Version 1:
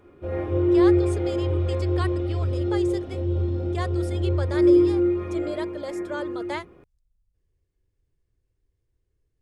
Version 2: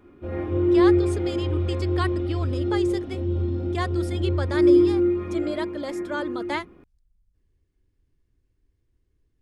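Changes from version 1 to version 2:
speech +4.5 dB; master: add graphic EQ 125/250/500/8000 Hz -3/+7/-6/-4 dB

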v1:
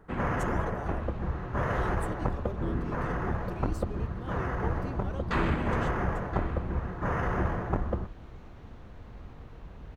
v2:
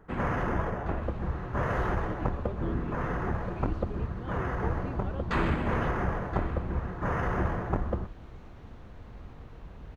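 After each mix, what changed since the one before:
speech: add LPF 3400 Hz 24 dB/oct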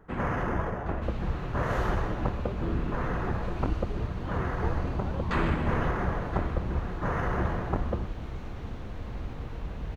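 second sound +10.0 dB

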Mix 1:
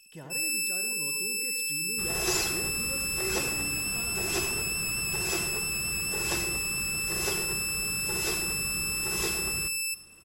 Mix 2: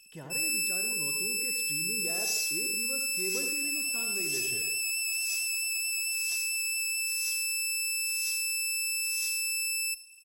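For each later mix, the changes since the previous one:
second sound: add band-pass 5800 Hz, Q 3.2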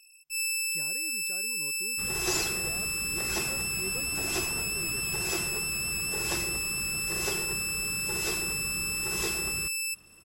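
speech: entry +0.60 s; second sound: remove band-pass 5800 Hz, Q 3.2; reverb: off

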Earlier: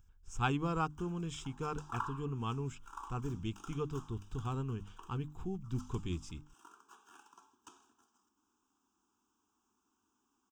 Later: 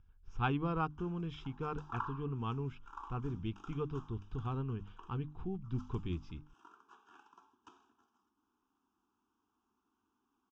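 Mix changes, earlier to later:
speech: add LPF 5300 Hz 24 dB/oct; master: add air absorption 190 m

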